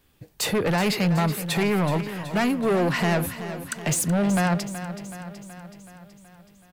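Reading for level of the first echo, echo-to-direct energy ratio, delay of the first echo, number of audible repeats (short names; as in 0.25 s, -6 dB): -12.0 dB, -10.0 dB, 0.375 s, 6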